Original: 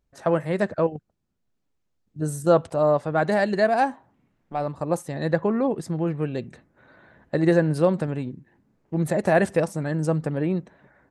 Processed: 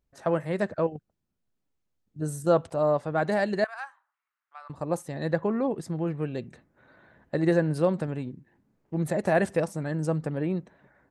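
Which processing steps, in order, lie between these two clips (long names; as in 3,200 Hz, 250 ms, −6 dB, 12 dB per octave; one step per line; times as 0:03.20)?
0:03.64–0:04.70: four-pole ladder high-pass 1,100 Hz, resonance 55%
level −4 dB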